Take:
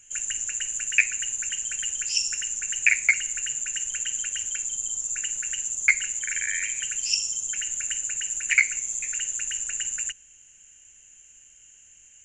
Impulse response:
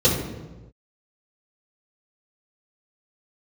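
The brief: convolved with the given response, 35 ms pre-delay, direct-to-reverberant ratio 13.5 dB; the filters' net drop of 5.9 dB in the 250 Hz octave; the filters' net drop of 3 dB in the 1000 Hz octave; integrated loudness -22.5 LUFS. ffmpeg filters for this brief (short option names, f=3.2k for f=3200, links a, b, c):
-filter_complex "[0:a]equalizer=f=250:t=o:g=-8.5,equalizer=f=1k:t=o:g=-5,asplit=2[a][b];[1:a]atrim=start_sample=2205,adelay=35[c];[b][c]afir=irnorm=-1:irlink=0,volume=-32.5dB[d];[a][d]amix=inputs=2:normalize=0,volume=2.5dB"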